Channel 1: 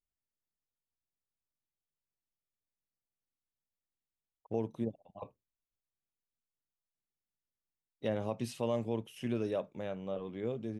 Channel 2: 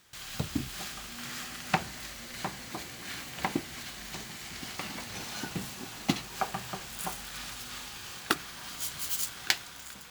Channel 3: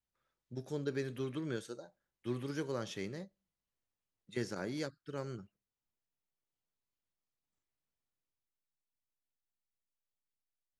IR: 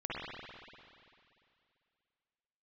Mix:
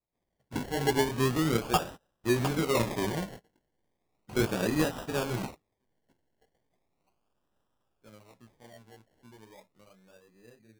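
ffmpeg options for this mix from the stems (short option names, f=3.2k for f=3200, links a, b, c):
-filter_complex "[0:a]volume=-16.5dB[a];[1:a]equalizer=f=620:w=1.1:g=8,volume=0dB[b];[2:a]dynaudnorm=f=450:g=3:m=11dB,volume=2.5dB,asplit=2[c][d];[d]apad=whole_len=445417[e];[b][e]sidechaingate=range=-41dB:threshold=-45dB:ratio=16:detection=peak[f];[a][f][c]amix=inputs=3:normalize=0,flanger=delay=15.5:depth=3.9:speed=2.4,acrusher=samples=28:mix=1:aa=0.000001:lfo=1:lforange=16.8:lforate=0.36"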